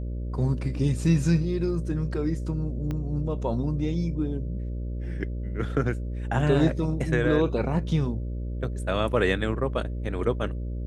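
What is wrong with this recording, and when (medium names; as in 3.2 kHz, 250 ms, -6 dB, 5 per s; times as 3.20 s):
buzz 60 Hz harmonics 10 -31 dBFS
2.91 s: pop -20 dBFS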